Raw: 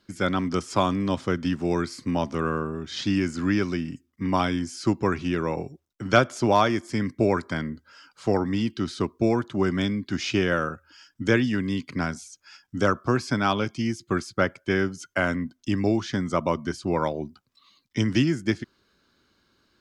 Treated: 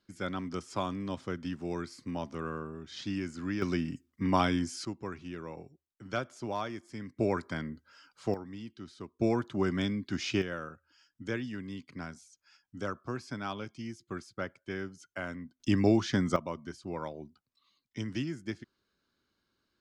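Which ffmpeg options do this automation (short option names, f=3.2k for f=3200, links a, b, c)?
-af "asetnsamples=n=441:p=0,asendcmd='3.62 volume volume -3dB;4.85 volume volume -15.5dB;7.17 volume volume -7.5dB;8.34 volume volume -18dB;9.19 volume volume -6dB;10.42 volume volume -14dB;15.6 volume volume -1.5dB;16.36 volume volume -13dB',volume=-11dB"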